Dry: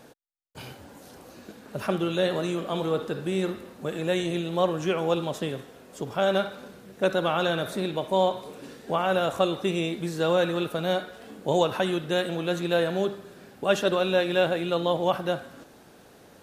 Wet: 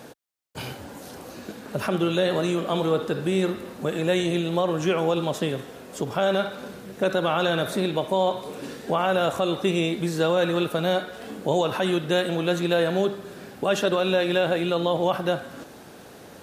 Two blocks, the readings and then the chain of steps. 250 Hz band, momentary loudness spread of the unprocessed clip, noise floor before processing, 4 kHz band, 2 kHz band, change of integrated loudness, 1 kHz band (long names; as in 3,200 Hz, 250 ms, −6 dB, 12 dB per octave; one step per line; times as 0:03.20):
+3.5 dB, 17 LU, −53 dBFS, +2.5 dB, +2.5 dB, +2.0 dB, +1.5 dB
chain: high-pass filter 53 Hz
in parallel at −1.5 dB: downward compressor, threshold −35 dBFS, peak gain reduction 17 dB
on the sum: brickwall limiter −14 dBFS, peak gain reduction 6.5 dB
level +2 dB